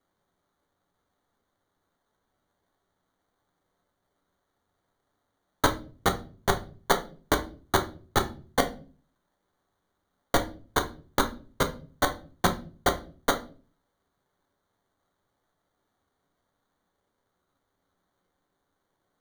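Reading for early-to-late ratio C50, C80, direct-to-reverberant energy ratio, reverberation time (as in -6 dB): 14.0 dB, 20.0 dB, 5.0 dB, 0.40 s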